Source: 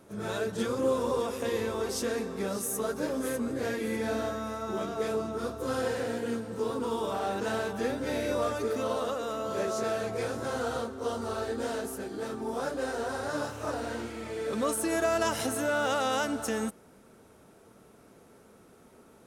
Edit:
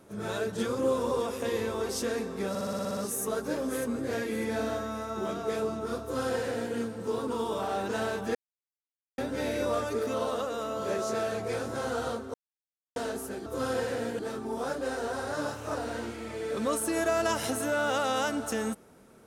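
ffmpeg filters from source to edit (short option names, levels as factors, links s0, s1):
-filter_complex "[0:a]asplit=14[s0][s1][s2][s3][s4][s5][s6][s7][s8][s9][s10][s11][s12][s13];[s0]atrim=end=2.552[s14];[s1]atrim=start=2.488:end=2.552[s15];[s2]atrim=start=2.488:end=2.552[s16];[s3]atrim=start=2.488:end=2.552[s17];[s4]atrim=start=2.488:end=2.552[s18];[s5]atrim=start=2.488:end=2.552[s19];[s6]atrim=start=2.488:end=2.552[s20];[s7]atrim=start=2.488:end=2.552[s21];[s8]atrim=start=2.488:end=7.87,asetpts=PTS-STARTPTS,afade=t=out:st=5.378:d=0.004:c=hsin,apad=pad_dur=0.83[s22];[s9]atrim=start=7.87:end=11.03,asetpts=PTS-STARTPTS,afade=t=in:d=0.004:c=hsin,afade=t=out:st=3.156:d=0.004:c=hsin[s23];[s10]atrim=start=11.03:end=11.65,asetpts=PTS-STARTPTS,volume=0[s24];[s11]atrim=start=11.65:end=12.152,asetpts=PTS-STARTPTS,afade=t=in:d=0.004:c=hsin[s25];[s12]atrim=start=5.538:end=6.272[s26];[s13]atrim=start=12.148[s27];[s14][s15]acrossfade=d=0.004:c1=hsin:c2=hsin[s28];[s28][s16]acrossfade=d=0.004:c1=hsin:c2=hsin[s29];[s29][s17]acrossfade=d=0.004:c1=hsin:c2=hsin[s30];[s30][s18]acrossfade=d=0.004:c1=hsin:c2=hsin[s31];[s31][s19]acrossfade=d=0.004:c1=hsin:c2=hsin[s32];[s32][s20]acrossfade=d=0.004:c1=hsin:c2=hsin[s33];[s33][s21]acrossfade=d=0.004:c1=hsin:c2=hsin[s34];[s22][s23][s24][s25]concat=n=4:v=0:a=1[s35];[s34][s35]acrossfade=d=0.004:c1=hsin:c2=hsin[s36];[s36][s26]acrossfade=d=0.004:c1=hsin:c2=hsin[s37];[s37][s27]acrossfade=d=0.004:c1=hsin:c2=hsin"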